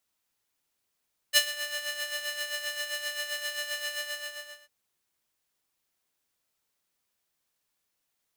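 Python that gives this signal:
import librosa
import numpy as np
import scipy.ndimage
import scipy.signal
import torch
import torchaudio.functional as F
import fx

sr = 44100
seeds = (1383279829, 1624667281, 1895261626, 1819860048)

y = fx.sub_patch_tremolo(sr, seeds[0], note=74, wave='square', wave2='saw', interval_st=0, detune_cents=30, level2_db=-9, sub_db=-13.5, noise_db=-14, kind='highpass', cutoff_hz=1300.0, q=0.94, env_oct=1.0, env_decay_s=0.27, env_sustain_pct=40, attack_ms=38.0, decay_s=0.09, sustain_db=-15.5, release_s=0.72, note_s=2.63, lfo_hz=7.6, tremolo_db=8)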